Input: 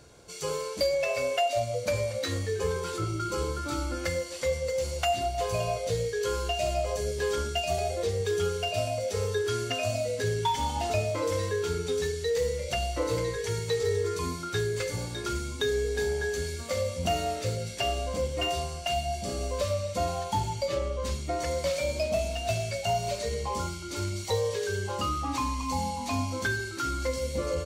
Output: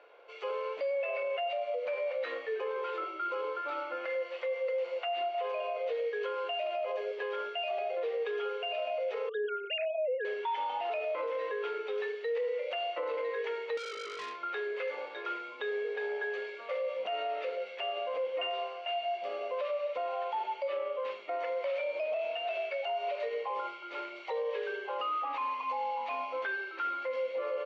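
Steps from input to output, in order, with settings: 9.29–10.25 s: formants replaced by sine waves; elliptic band-pass 480–2800 Hz, stop band 60 dB; band-stop 1.6 kHz, Q 24; peak limiter -28.5 dBFS, peak gain reduction 10.5 dB; 13.77–14.42 s: transformer saturation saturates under 2.7 kHz; trim +1.5 dB

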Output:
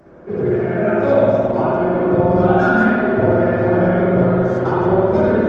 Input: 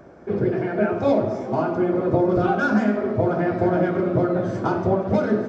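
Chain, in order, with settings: spring tank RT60 2 s, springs 55 ms, chirp 60 ms, DRR -6.5 dB; trim -1 dB; Opus 20 kbps 48 kHz

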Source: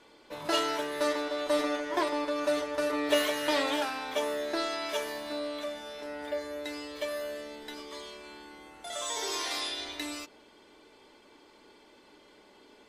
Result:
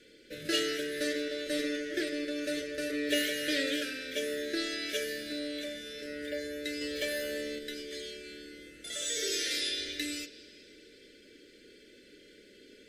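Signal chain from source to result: in parallel at +2.5 dB: gain riding within 3 dB 2 s; on the sum: Chebyshev band-stop 520–1600 Hz, order 3; on a send at -15.5 dB: peaking EQ 5.2 kHz +8 dB 0.4 oct + reverberation RT60 3.8 s, pre-delay 24 ms; 6.81–7.59 s: on the sum: waveshaping leveller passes 1; trim -6 dB

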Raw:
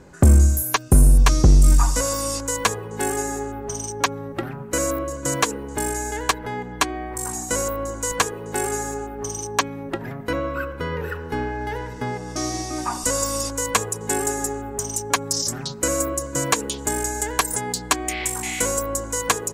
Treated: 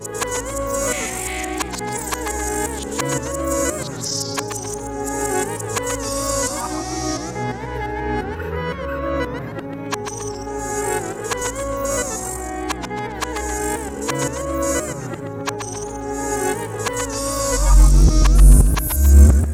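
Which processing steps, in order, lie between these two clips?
reverse the whole clip; harmonic-percussive split harmonic +8 dB; modulated delay 135 ms, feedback 39%, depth 189 cents, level -7 dB; trim -5 dB

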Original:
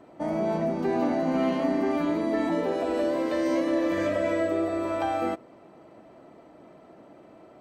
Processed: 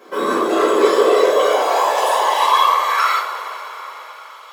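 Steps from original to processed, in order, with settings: treble shelf 2.2 kHz +12 dB; wide varispeed 1.68×; whisper effect; high-pass sweep 300 Hz -> 2.9 kHz, 0.46–4.38 s; two-slope reverb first 0.35 s, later 4.8 s, from -18 dB, DRR -6 dB; trim -1 dB

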